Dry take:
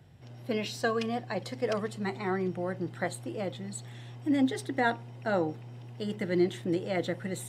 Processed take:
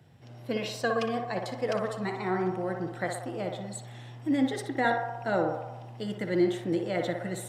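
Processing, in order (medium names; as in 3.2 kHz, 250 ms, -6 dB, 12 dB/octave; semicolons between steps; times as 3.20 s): high-pass 95 Hz; on a send: band-passed feedback delay 60 ms, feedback 75%, band-pass 880 Hz, level -3 dB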